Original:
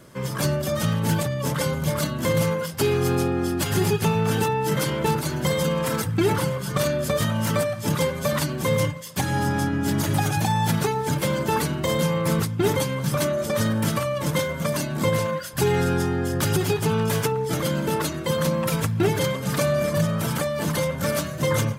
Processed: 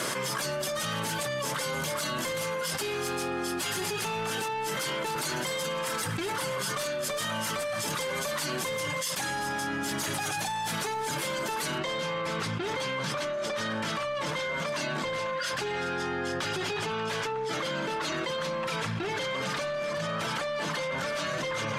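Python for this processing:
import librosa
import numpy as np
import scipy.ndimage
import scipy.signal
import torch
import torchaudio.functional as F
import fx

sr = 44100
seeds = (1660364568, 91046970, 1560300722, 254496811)

y = fx.highpass(x, sr, hz=1100.0, slope=6)
y = 10.0 ** (-26.5 / 20.0) * np.tanh(y / 10.0 ** (-26.5 / 20.0))
y = fx.lowpass(y, sr, hz=fx.steps((0.0, 11000.0), (11.78, 4500.0)), slope=12)
y = fx.env_flatten(y, sr, amount_pct=100)
y = F.gain(torch.from_numpy(y), -1.5).numpy()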